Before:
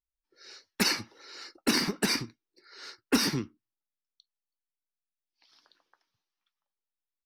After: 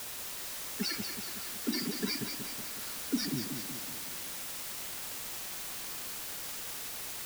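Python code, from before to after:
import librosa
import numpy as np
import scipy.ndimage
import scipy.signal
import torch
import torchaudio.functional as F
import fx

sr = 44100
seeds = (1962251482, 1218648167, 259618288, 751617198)

p1 = fx.spec_gate(x, sr, threshold_db=-10, keep='strong')
p2 = fx.quant_dither(p1, sr, seeds[0], bits=6, dither='triangular')
p3 = p2 + fx.echo_feedback(p2, sr, ms=186, feedback_pct=55, wet_db=-7.0, dry=0)
y = F.gain(torch.from_numpy(p3), -5.5).numpy()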